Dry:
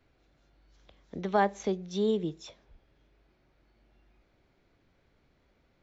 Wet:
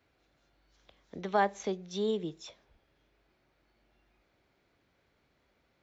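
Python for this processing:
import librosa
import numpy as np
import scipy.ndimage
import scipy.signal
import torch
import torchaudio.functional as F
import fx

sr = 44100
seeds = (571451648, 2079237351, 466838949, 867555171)

y = scipy.signal.sosfilt(scipy.signal.butter(2, 44.0, 'highpass', fs=sr, output='sos'), x)
y = fx.low_shelf(y, sr, hz=400.0, db=-6.5)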